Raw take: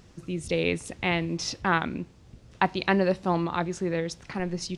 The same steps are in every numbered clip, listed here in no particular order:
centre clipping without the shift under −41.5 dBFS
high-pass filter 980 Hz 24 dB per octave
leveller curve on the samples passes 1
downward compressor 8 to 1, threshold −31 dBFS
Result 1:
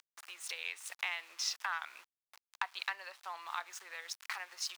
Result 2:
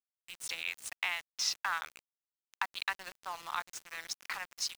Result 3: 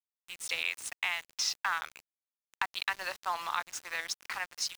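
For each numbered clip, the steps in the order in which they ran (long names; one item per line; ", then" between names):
leveller curve on the samples, then centre clipping without the shift, then downward compressor, then high-pass filter
downward compressor, then leveller curve on the samples, then high-pass filter, then centre clipping without the shift
high-pass filter, then downward compressor, then leveller curve on the samples, then centre clipping without the shift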